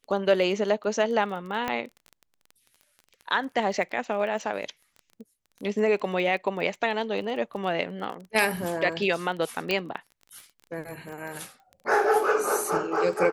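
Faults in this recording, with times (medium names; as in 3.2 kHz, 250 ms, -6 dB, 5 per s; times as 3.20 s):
crackle 20 per s -35 dBFS
1.68 s: pop -14 dBFS
9.71 s: pop -12 dBFS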